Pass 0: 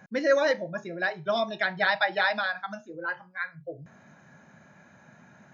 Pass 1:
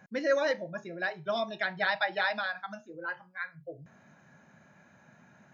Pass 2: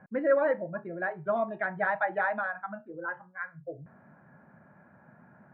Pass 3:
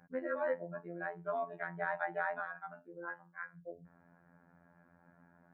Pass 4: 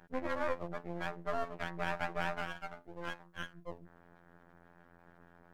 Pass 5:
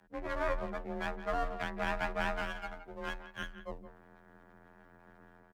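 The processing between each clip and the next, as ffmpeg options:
ffmpeg -i in.wav -af "equalizer=frequency=2700:width=6.1:gain=2.5,volume=-4.5dB" out.wav
ffmpeg -i in.wav -af "lowpass=frequency=1600:width=0.5412,lowpass=frequency=1600:width=1.3066,volume=3dB" out.wav
ffmpeg -i in.wav -af "afftfilt=real='hypot(re,im)*cos(PI*b)':imag='0':win_size=2048:overlap=0.75,volume=-5dB" out.wav
ffmpeg -i in.wav -filter_complex "[0:a]asplit=2[link_01][link_02];[link_02]alimiter=level_in=5dB:limit=-24dB:level=0:latency=1:release=135,volume=-5dB,volume=-1dB[link_03];[link_01][link_03]amix=inputs=2:normalize=0,aeval=exprs='max(val(0),0)':channel_layout=same" out.wav
ffmpeg -i in.wav -filter_complex "[0:a]afreqshift=28,dynaudnorm=framelen=120:gausssize=5:maxgain=7dB,asplit=2[link_01][link_02];[link_02]adelay=170,highpass=300,lowpass=3400,asoftclip=type=hard:threshold=-22dB,volume=-12dB[link_03];[link_01][link_03]amix=inputs=2:normalize=0,volume=-5dB" out.wav

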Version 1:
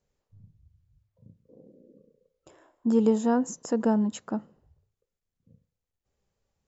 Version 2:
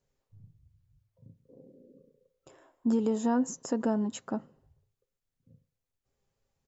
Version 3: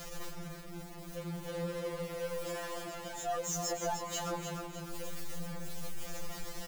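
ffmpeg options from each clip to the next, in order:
ffmpeg -i in.wav -af "alimiter=limit=-16dB:level=0:latency=1:release=136,aecho=1:1:7.5:0.34,volume=-1.5dB" out.wav
ffmpeg -i in.wav -af "aeval=exprs='val(0)+0.5*0.0188*sgn(val(0))':channel_layout=same,aecho=1:1:303|606|909|1212|1515:0.398|0.171|0.0736|0.0317|0.0136,afftfilt=real='re*2.83*eq(mod(b,8),0)':imag='im*2.83*eq(mod(b,8),0)':win_size=2048:overlap=0.75,volume=1dB" out.wav

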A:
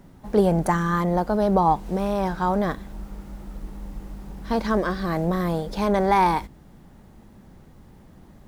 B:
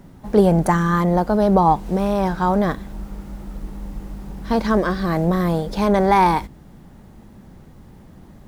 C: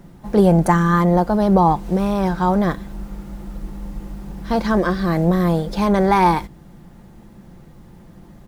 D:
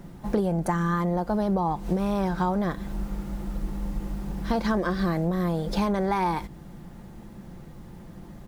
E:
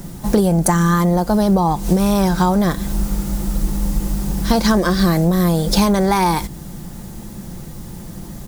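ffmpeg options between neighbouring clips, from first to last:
ffmpeg -i in.wav -af "equalizer=frequency=140:width_type=o:width=2.4:gain=2,volume=3.5dB" out.wav
ffmpeg -i in.wav -af "aecho=1:1:5.8:0.35" out.wav
ffmpeg -i in.wav -af "acompressor=threshold=-21dB:ratio=12" out.wav
ffmpeg -i in.wav -af "bass=frequency=250:gain=3,treble=frequency=4000:gain=15,volume=8.5dB" out.wav

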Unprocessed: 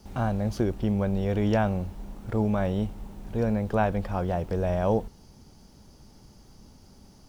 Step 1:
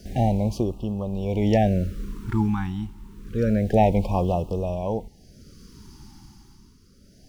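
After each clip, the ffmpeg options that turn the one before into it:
ffmpeg -i in.wav -af "tremolo=f=0.51:d=0.68,afftfilt=real='re*(1-between(b*sr/1024,530*pow(1800/530,0.5+0.5*sin(2*PI*0.28*pts/sr))/1.41,530*pow(1800/530,0.5+0.5*sin(2*PI*0.28*pts/sr))*1.41))':imag='im*(1-between(b*sr/1024,530*pow(1800/530,0.5+0.5*sin(2*PI*0.28*pts/sr))/1.41,530*pow(1800/530,0.5+0.5*sin(2*PI*0.28*pts/sr))*1.41))':win_size=1024:overlap=0.75,volume=7dB" out.wav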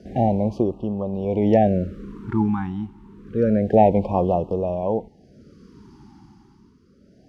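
ffmpeg -i in.wav -af "bandpass=frequency=450:width_type=q:width=0.52:csg=0,volume=5dB" out.wav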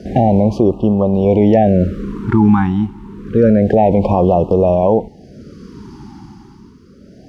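ffmpeg -i in.wav -af "alimiter=level_in=13.5dB:limit=-1dB:release=50:level=0:latency=1,volume=-1dB" out.wav

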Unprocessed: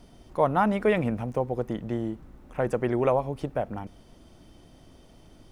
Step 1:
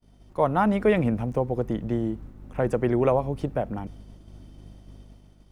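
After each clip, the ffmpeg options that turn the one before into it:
ffmpeg -i in.wav -filter_complex "[0:a]aeval=exprs='val(0)+0.00501*(sin(2*PI*50*n/s)+sin(2*PI*2*50*n/s)/2+sin(2*PI*3*50*n/s)/3+sin(2*PI*4*50*n/s)/4+sin(2*PI*5*50*n/s)/5)':channel_layout=same,acrossover=split=440[link_01][link_02];[link_01]dynaudnorm=framelen=130:gausssize=9:maxgain=4dB[link_03];[link_03][link_02]amix=inputs=2:normalize=0,agate=range=-33dB:threshold=-39dB:ratio=3:detection=peak" out.wav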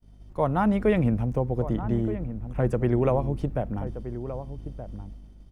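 ffmpeg -i in.wav -filter_complex "[0:a]lowshelf=frequency=160:gain=10.5,asplit=2[link_01][link_02];[link_02]adelay=1224,volume=-11dB,highshelf=frequency=4000:gain=-27.6[link_03];[link_01][link_03]amix=inputs=2:normalize=0,volume=-3.5dB" out.wav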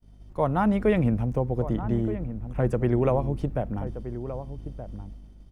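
ffmpeg -i in.wav -af anull out.wav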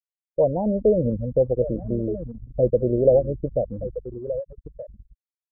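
ffmpeg -i in.wav -af "lowpass=frequency=540:width_type=q:width=4.9,afftfilt=real='re*gte(hypot(re,im),0.141)':imag='im*gte(hypot(re,im),0.141)':win_size=1024:overlap=0.75,anlmdn=15.8,volume=-2.5dB" out.wav

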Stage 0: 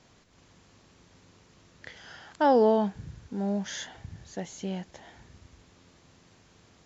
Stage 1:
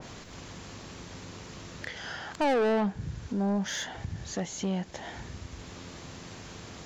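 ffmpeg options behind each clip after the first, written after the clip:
ffmpeg -i in.wav -filter_complex "[0:a]asplit=2[link_01][link_02];[link_02]acompressor=mode=upward:threshold=-28dB:ratio=2.5,volume=-3dB[link_03];[link_01][link_03]amix=inputs=2:normalize=0,asoftclip=type=tanh:threshold=-23dB,adynamicequalizer=threshold=0.00794:dfrequency=2100:dqfactor=0.7:tfrequency=2100:tqfactor=0.7:attack=5:release=100:ratio=0.375:range=2:mode=cutabove:tftype=highshelf" out.wav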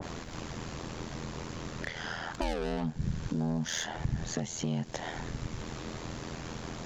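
ffmpeg -i in.wav -filter_complex "[0:a]acrossover=split=140|3000[link_01][link_02][link_03];[link_02]acompressor=threshold=-39dB:ratio=6[link_04];[link_01][link_04][link_03]amix=inputs=3:normalize=0,aeval=exprs='val(0)*sin(2*PI*41*n/s)':channel_layout=same,adynamicequalizer=threshold=0.00141:dfrequency=1800:dqfactor=0.7:tfrequency=1800:tqfactor=0.7:attack=5:release=100:ratio=0.375:range=2.5:mode=cutabove:tftype=highshelf,volume=8dB" out.wav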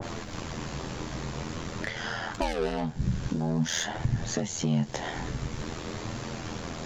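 ffmpeg -i in.wav -af "flanger=delay=8.6:depth=7.5:regen=39:speed=0.48:shape=sinusoidal,volume=8dB" out.wav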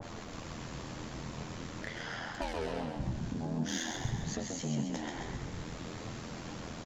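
ffmpeg -i in.wav -filter_complex "[0:a]bandreject=frequency=370:width=12,asplit=9[link_01][link_02][link_03][link_04][link_05][link_06][link_07][link_08][link_09];[link_02]adelay=132,afreqshift=41,volume=-4.5dB[link_10];[link_03]adelay=264,afreqshift=82,volume=-9.5dB[link_11];[link_04]adelay=396,afreqshift=123,volume=-14.6dB[link_12];[link_05]adelay=528,afreqshift=164,volume=-19.6dB[link_13];[link_06]adelay=660,afreqshift=205,volume=-24.6dB[link_14];[link_07]adelay=792,afreqshift=246,volume=-29.7dB[link_15];[link_08]adelay=924,afreqshift=287,volume=-34.7dB[link_16];[link_09]adelay=1056,afreqshift=328,volume=-39.8dB[link_17];[link_01][link_10][link_11][link_12][link_13][link_14][link_15][link_16][link_17]amix=inputs=9:normalize=0,volume=-8.5dB" out.wav

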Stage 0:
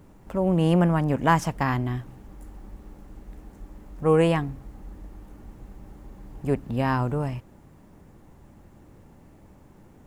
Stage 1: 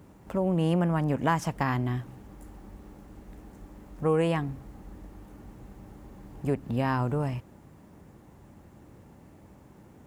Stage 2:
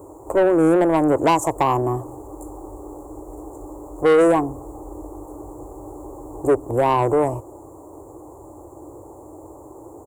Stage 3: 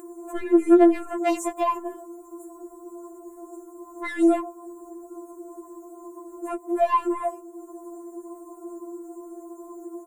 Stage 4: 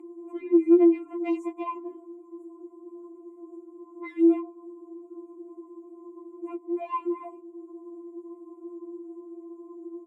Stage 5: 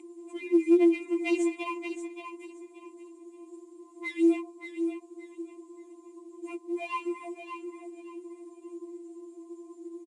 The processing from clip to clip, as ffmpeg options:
ffmpeg -i in.wav -af "highpass=58,acompressor=threshold=-25dB:ratio=2" out.wav
ffmpeg -i in.wav -af "firequalizer=gain_entry='entry(110,0);entry(200,-21);entry(310,12);entry(1100,9);entry(1600,-19);entry(4800,-24);entry(7100,12);entry(11000,6)':delay=0.05:min_phase=1,asoftclip=type=tanh:threshold=-16.5dB,volume=6dB" out.wav
ffmpeg -i in.wav -af "acompressor=mode=upward:threshold=-29dB:ratio=2.5,afftfilt=real='re*4*eq(mod(b,16),0)':imag='im*4*eq(mod(b,16),0)':win_size=2048:overlap=0.75,volume=-3dB" out.wav
ffmpeg -i in.wav -filter_complex "[0:a]asplit=3[link_01][link_02][link_03];[link_01]bandpass=frequency=300:width_type=q:width=8,volume=0dB[link_04];[link_02]bandpass=frequency=870:width_type=q:width=8,volume=-6dB[link_05];[link_03]bandpass=frequency=2240:width_type=q:width=8,volume=-9dB[link_06];[link_04][link_05][link_06]amix=inputs=3:normalize=0,volume=6dB" out.wav
ffmpeg -i in.wav -af "aexciter=amount=7.6:drive=5:freq=2100,aecho=1:1:577|1154|1731:0.398|0.0955|0.0229,volume=-3.5dB" -ar 22050 -c:a adpcm_ima_wav out.wav

